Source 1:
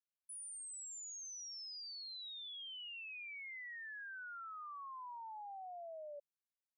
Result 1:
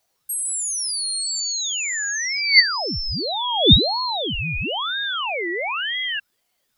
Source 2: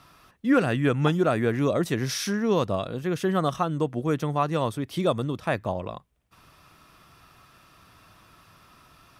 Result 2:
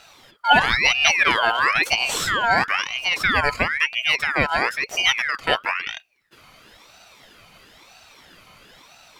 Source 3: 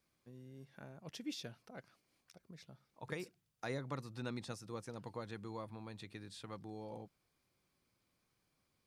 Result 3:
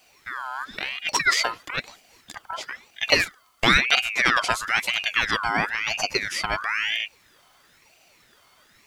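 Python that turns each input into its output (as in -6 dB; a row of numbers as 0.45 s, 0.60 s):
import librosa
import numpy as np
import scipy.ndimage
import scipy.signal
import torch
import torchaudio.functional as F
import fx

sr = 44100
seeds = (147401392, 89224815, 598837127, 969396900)

y = fx.small_body(x, sr, hz=(1900.0, 3300.0), ring_ms=55, db=18)
y = fx.ring_lfo(y, sr, carrier_hz=1900.0, swing_pct=40, hz=1.0)
y = y * 10.0 ** (-1.5 / 20.0) / np.max(np.abs(y))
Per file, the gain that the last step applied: +26.5 dB, +7.0 dB, +24.5 dB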